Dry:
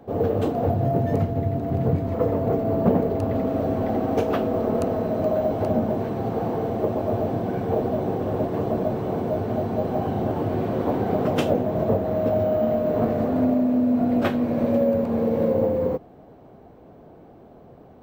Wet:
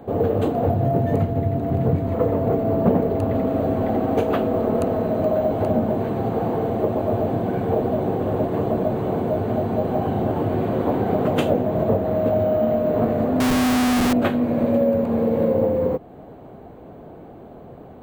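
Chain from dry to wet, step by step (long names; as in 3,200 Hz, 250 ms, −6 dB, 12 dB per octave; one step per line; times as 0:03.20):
parametric band 5,400 Hz −14.5 dB 0.24 octaves
in parallel at +1 dB: downward compressor, threshold −32 dBFS, peak gain reduction 17.5 dB
0:13.40–0:14.13: on the sum: comparator with hysteresis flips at −22 dBFS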